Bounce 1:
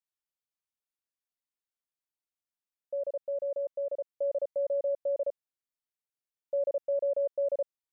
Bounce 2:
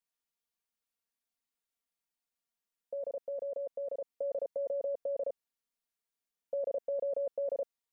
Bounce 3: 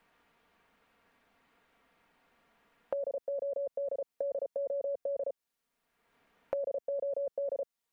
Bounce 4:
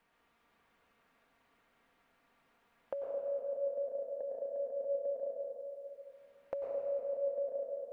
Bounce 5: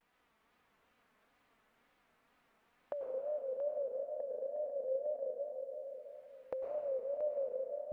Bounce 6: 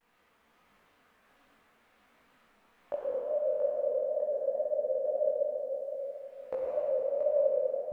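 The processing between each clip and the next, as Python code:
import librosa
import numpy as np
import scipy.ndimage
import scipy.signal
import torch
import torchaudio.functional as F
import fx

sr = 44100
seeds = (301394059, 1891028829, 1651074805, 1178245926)

y1 = x + 0.83 * np.pad(x, (int(4.3 * sr / 1000.0), 0))[:len(x)]
y2 = fx.band_squash(y1, sr, depth_pct=100)
y3 = fx.rev_plate(y2, sr, seeds[0], rt60_s=2.7, hf_ratio=0.9, predelay_ms=85, drr_db=0.0)
y3 = F.gain(torch.from_numpy(y3), -5.0).numpy()
y4 = fx.wow_flutter(y3, sr, seeds[1], rate_hz=2.1, depth_cents=120.0)
y4 = y4 + 10.0 ** (-9.5 / 20.0) * np.pad(y4, (int(680 * sr / 1000.0), 0))[:len(y4)]
y4 = F.gain(torch.from_numpy(y4), -1.5).numpy()
y5 = fx.rev_schroeder(y4, sr, rt60_s=1.8, comb_ms=31, drr_db=0.0)
y5 = fx.detune_double(y5, sr, cents=47)
y5 = F.gain(torch.from_numpy(y5), 8.0).numpy()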